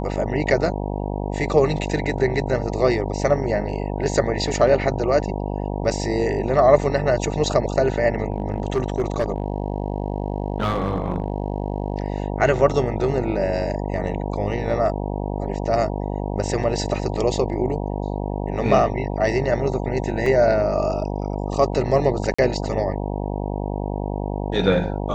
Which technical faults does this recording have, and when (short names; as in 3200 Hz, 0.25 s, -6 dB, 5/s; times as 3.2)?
buzz 50 Hz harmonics 19 -26 dBFS
8.32–12.12 clipped -15.5 dBFS
20.26 gap 3.4 ms
22.34–22.39 gap 45 ms